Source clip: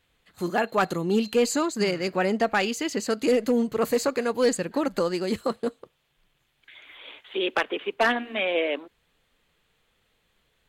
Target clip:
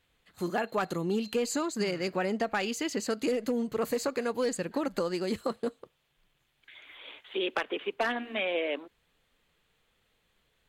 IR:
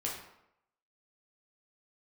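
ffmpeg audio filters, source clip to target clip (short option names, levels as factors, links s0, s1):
-af "acompressor=threshold=0.0708:ratio=4,volume=0.708"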